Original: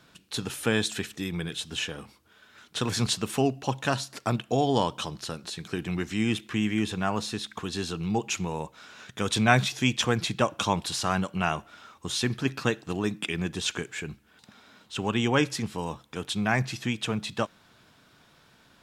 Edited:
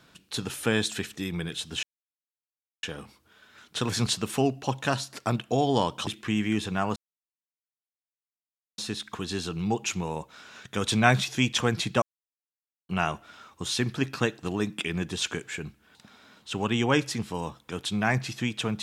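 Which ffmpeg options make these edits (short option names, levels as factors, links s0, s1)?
-filter_complex "[0:a]asplit=6[s0][s1][s2][s3][s4][s5];[s0]atrim=end=1.83,asetpts=PTS-STARTPTS,afade=t=out:st=1.826:d=0.004:c=hsin,apad=pad_dur=1[s6];[s1]atrim=start=1.83:end=5.072,asetpts=PTS-STARTPTS,afade=t=in:d=0.004:c=hsin[s7];[s2]atrim=start=6.328:end=7.22,asetpts=PTS-STARTPTS,afade=t=out:st=0.888:d=0.004:c=hsin,apad=pad_dur=1.82[s8];[s3]atrim=start=7.22:end=10.46,asetpts=PTS-STARTPTS,afade=t=in:d=0.004:c=hsin,afade=t=out:st=3.236:d=0.004:c=hsin[s9];[s4]atrim=start=10.46:end=11.33,asetpts=PTS-STARTPTS,volume=0[s10];[s5]atrim=start=11.33,asetpts=PTS-STARTPTS,afade=t=in:d=0.004:c=hsin[s11];[s6][s7]concat=n=2:v=0:a=1[s12];[s8][s9][s10][s11]concat=n=4:v=0:a=1[s13];[s12][s13]acrossfade=d=0.004:c1=hsin:c2=hsin"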